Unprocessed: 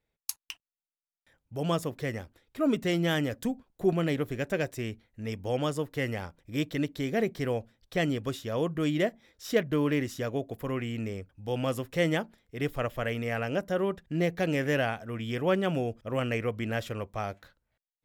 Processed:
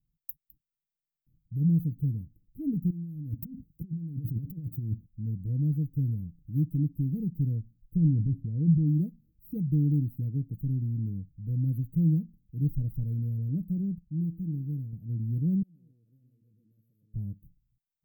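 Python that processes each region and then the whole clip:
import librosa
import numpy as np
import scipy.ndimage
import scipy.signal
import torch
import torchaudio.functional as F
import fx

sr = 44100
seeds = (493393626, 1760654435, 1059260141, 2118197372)

y = fx.chain(x, sr, fx.highpass(hz=57.0, slope=12),
    fx.over_compress(threshold_db=-39.0, ratio=-1.0), at=(2.9, 5.06))
y = fx.chain(y, sr, fx.lowpass(hz=2300.0, slope=12),
    fx.transient(attack_db=0, sustain_db=9), at=(7.96, 8.87))
y = fx.chain(y, sr, fx.band_shelf(hz=760.0, db=-8.0, octaves=1.3),
    fx.comb_fb(f0_hz=65.0, decay_s=0.9, harmonics='odd', damping=0.0, mix_pct=60), at=(13.98, 14.93))
y = fx.chain(y, sr, fx.bandpass_q(hz=4300.0, q=3.6),
    fx.echo_single(ms=124, db=-3.0),
    fx.env_flatten(amount_pct=50), at=(15.62, 17.14))
y = scipy.signal.sosfilt(scipy.signal.cheby2(4, 70, [810.0, 6400.0], 'bandstop', fs=sr, output='sos'), y)
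y = fx.peak_eq(y, sr, hz=800.0, db=9.5, octaves=0.34)
y = y + 0.44 * np.pad(y, (int(6.5 * sr / 1000.0), 0))[:len(y)]
y = y * librosa.db_to_amplitude(7.0)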